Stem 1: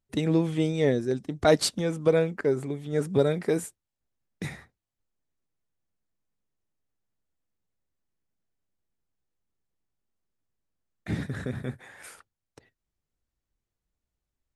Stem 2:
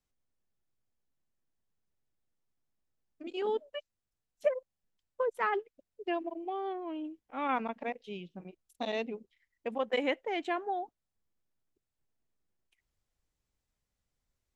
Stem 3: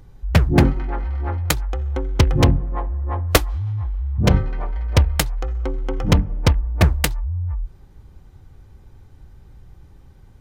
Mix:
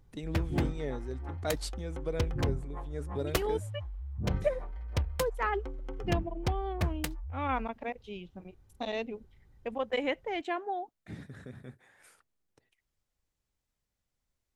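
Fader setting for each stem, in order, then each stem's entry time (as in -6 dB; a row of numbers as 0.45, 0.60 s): -13.5, -0.5, -16.0 dB; 0.00, 0.00, 0.00 s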